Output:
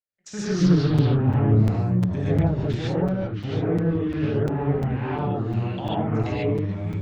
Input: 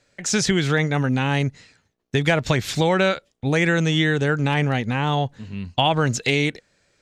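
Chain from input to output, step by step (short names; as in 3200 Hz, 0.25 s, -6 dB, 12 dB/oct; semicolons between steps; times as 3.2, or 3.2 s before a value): median filter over 3 samples; treble ducked by the level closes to 550 Hz, closed at -15 dBFS; limiter -17.5 dBFS, peak gain reduction 10.5 dB; echoes that change speed 0.149 s, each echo -3 st, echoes 3; gate -30 dBFS, range -34 dB; 0.52–2.65 low shelf 320 Hz +6.5 dB; non-linear reverb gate 0.17 s rising, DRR -8 dB; crackling interface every 0.35 s, samples 256, zero, from 0.98; Doppler distortion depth 0.24 ms; gain -8.5 dB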